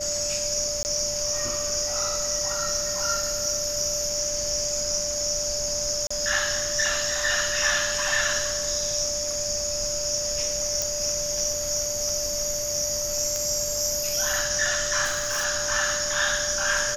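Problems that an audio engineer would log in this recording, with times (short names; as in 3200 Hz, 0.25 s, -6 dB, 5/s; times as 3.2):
tone 590 Hz -31 dBFS
0.83–0.85 gap 19 ms
6.07–6.11 gap 35 ms
10.82 pop
13.36 pop
15.04–15.46 clipped -22.5 dBFS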